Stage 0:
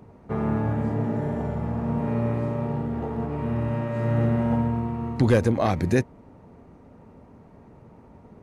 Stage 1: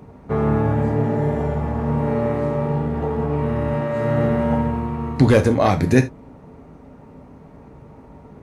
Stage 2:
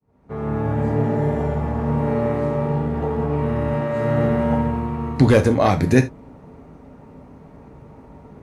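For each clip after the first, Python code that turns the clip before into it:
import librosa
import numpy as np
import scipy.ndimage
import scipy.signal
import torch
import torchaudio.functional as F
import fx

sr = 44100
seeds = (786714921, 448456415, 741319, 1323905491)

y1 = fx.rev_gated(x, sr, seeds[0], gate_ms=100, shape='falling', drr_db=6.0)
y1 = F.gain(torch.from_numpy(y1), 5.5).numpy()
y2 = fx.fade_in_head(y1, sr, length_s=0.96)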